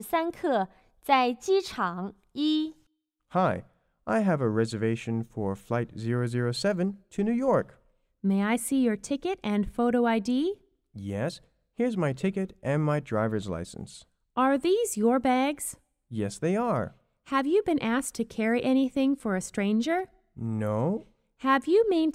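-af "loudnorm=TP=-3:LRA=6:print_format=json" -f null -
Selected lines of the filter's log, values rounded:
"input_i" : "-27.7",
"input_tp" : "-9.4",
"input_lra" : "2.1",
"input_thresh" : "-38.1",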